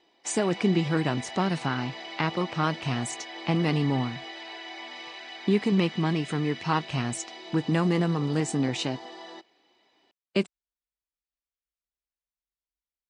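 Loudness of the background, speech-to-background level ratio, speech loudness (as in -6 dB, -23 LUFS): -40.0 LUFS, 12.0 dB, -28.0 LUFS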